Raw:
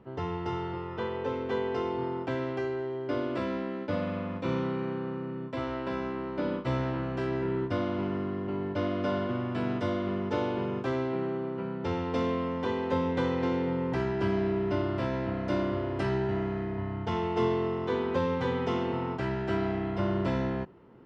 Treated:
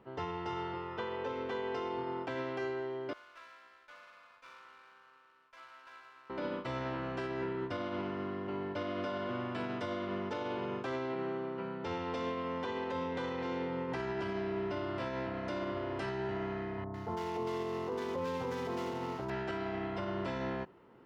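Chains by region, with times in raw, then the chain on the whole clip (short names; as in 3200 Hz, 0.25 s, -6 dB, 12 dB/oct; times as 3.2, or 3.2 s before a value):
3.13–6.3 ladder band-pass 2000 Hz, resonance 25% + notch 1900 Hz, Q 8.4 + running maximum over 5 samples
16.84–19.3 median filter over 15 samples + bands offset in time lows, highs 0.1 s, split 1200 Hz
whole clip: low shelf 360 Hz -10 dB; limiter -28.5 dBFS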